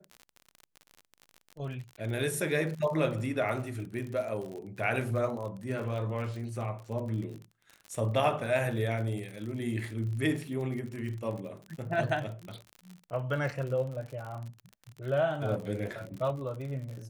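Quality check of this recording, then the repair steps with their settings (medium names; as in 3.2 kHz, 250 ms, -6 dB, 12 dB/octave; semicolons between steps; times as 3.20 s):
crackle 52 per s -37 dBFS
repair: de-click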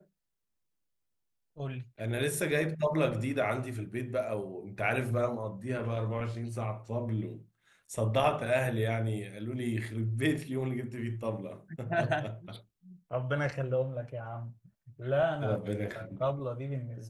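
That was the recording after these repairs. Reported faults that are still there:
nothing left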